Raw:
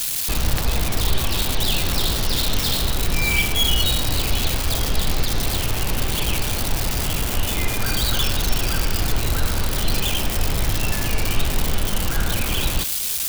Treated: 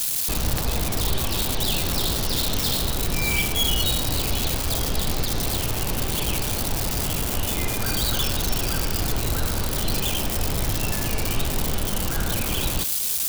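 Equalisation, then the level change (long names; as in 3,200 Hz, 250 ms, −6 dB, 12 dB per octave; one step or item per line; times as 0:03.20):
low-shelf EQ 72 Hz −6.5 dB
parametric band 2,200 Hz −4.5 dB 2.1 octaves
0.0 dB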